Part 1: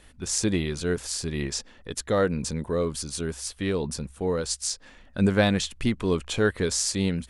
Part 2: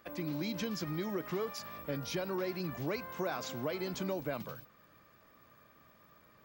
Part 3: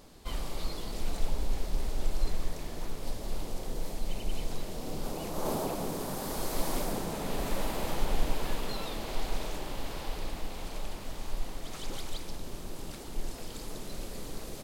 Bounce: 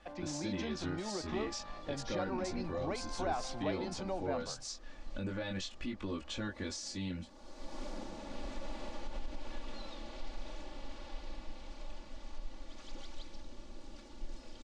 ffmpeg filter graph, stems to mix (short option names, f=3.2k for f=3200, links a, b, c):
-filter_complex "[0:a]alimiter=limit=-14dB:level=0:latency=1:release=476,flanger=delay=19.5:depth=2.8:speed=0.48,volume=-7dB,asplit=2[a][b];[1:a]equalizer=f=770:t=o:w=0.55:g=13,volume=-5.5dB[c];[2:a]adelay=1050,volume=-12.5dB[d];[b]apad=whole_len=691512[e];[d][e]sidechaincompress=threshold=-45dB:ratio=16:attack=9.6:release=694[f];[a][f]amix=inputs=2:normalize=0,aecho=1:1:3.5:0.84,alimiter=level_in=6dB:limit=-24dB:level=0:latency=1:release=90,volume=-6dB,volume=0dB[g];[c][g]amix=inputs=2:normalize=0,lowpass=f=6.5k:w=0.5412,lowpass=f=6.5k:w=1.3066"